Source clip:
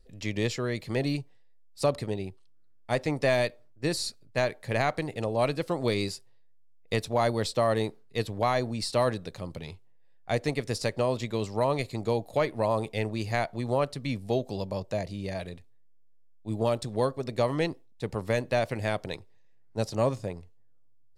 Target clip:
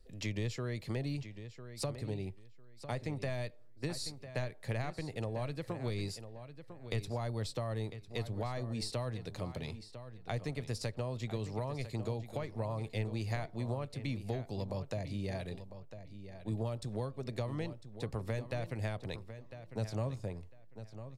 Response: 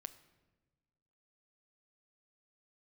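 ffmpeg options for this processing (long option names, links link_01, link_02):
-filter_complex "[0:a]acrossover=split=130[link_01][link_02];[link_02]acompressor=threshold=-36dB:ratio=10[link_03];[link_01][link_03]amix=inputs=2:normalize=0,asplit=2[link_04][link_05];[link_05]adelay=1001,lowpass=frequency=5000:poles=1,volume=-11.5dB,asplit=2[link_06][link_07];[link_07]adelay=1001,lowpass=frequency=5000:poles=1,volume=0.2,asplit=2[link_08][link_09];[link_09]adelay=1001,lowpass=frequency=5000:poles=1,volume=0.2[link_10];[link_06][link_08][link_10]amix=inputs=3:normalize=0[link_11];[link_04][link_11]amix=inputs=2:normalize=0,volume=-1dB"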